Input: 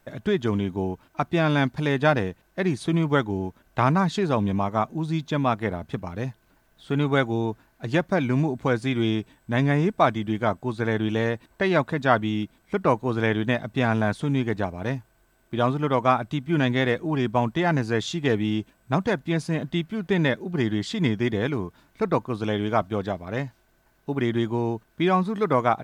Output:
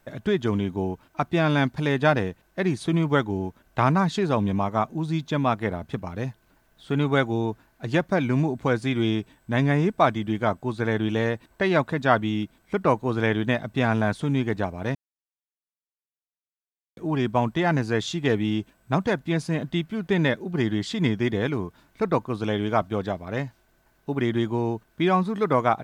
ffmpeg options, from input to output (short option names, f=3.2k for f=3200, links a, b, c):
-filter_complex "[0:a]asplit=3[a][b][c];[a]atrim=end=14.95,asetpts=PTS-STARTPTS,afade=t=out:st=14.946:d=0.004:c=hsin[d];[b]atrim=start=14.95:end=16.97,asetpts=PTS-STARTPTS,volume=0[e];[c]atrim=start=16.97,asetpts=PTS-STARTPTS,afade=t=in:d=0.004:c=hsin[f];[d][e][f]concat=n=3:v=0:a=1"